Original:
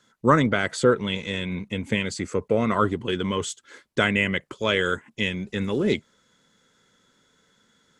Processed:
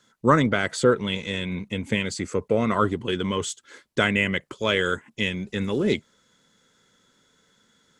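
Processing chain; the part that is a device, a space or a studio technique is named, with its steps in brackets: exciter from parts (in parallel at -13.5 dB: high-pass 2.4 kHz 12 dB/octave + saturation -30 dBFS, distortion -7 dB)

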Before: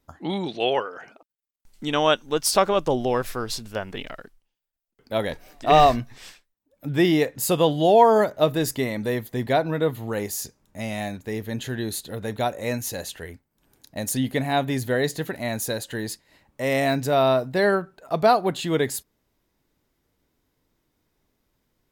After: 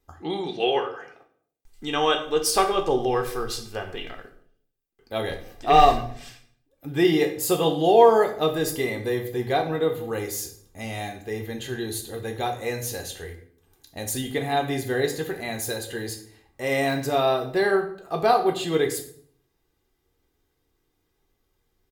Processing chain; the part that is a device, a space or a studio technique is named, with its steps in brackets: microphone above a desk (comb 2.5 ms, depth 52%; reverberation RT60 0.60 s, pre-delay 4 ms, DRR 3 dB); trim -3.5 dB

